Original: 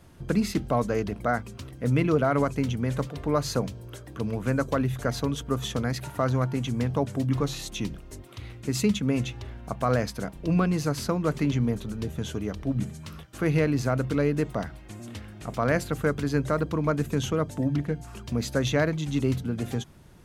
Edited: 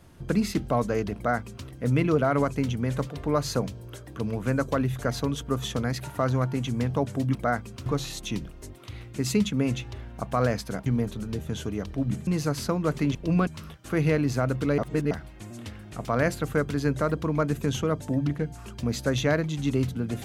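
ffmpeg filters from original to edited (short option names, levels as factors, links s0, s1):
-filter_complex "[0:a]asplit=9[s0][s1][s2][s3][s4][s5][s6][s7][s8];[s0]atrim=end=7.352[s9];[s1]atrim=start=1.158:end=1.672[s10];[s2]atrim=start=7.348:end=10.352[s11];[s3]atrim=start=11.548:end=12.962[s12];[s4]atrim=start=10.668:end=11.552[s13];[s5]atrim=start=10.348:end=10.672[s14];[s6]atrim=start=12.958:end=14.272[s15];[s7]atrim=start=14.268:end=14.602,asetpts=PTS-STARTPTS,areverse[s16];[s8]atrim=start=14.598[s17];[s9][s10]acrossfade=d=0.004:c1=hsin:c2=hsin[s18];[s18][s11]acrossfade=d=0.004:c1=hsin:c2=hsin[s19];[s19][s12]acrossfade=d=0.004:c1=hsin:c2=hsin[s20];[s20][s13]acrossfade=d=0.004:c1=hsin:c2=hsin[s21];[s21][s14]acrossfade=d=0.004:c1=hsin:c2=hsin[s22];[s22][s15]acrossfade=d=0.004:c1=hsin:c2=hsin[s23];[s23][s16]acrossfade=d=0.004:c1=hsin:c2=hsin[s24];[s24][s17]acrossfade=d=0.004:c1=hsin:c2=hsin"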